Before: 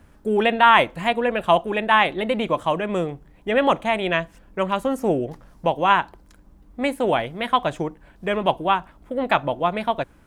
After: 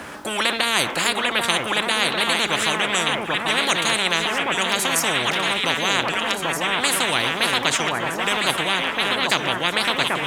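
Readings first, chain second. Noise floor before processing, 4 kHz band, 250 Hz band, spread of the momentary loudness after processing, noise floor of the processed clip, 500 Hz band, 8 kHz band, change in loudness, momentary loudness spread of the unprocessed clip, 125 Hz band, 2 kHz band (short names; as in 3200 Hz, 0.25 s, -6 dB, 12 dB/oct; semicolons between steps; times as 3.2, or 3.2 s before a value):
-53 dBFS, +11.5 dB, -3.0 dB, 3 LU, -28 dBFS, -4.5 dB, n/a, +1.5 dB, 11 LU, -1.5 dB, +5.0 dB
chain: weighting filter A; echo with dull and thin repeats by turns 0.787 s, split 1200 Hz, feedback 69%, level -6.5 dB; spectral compressor 10:1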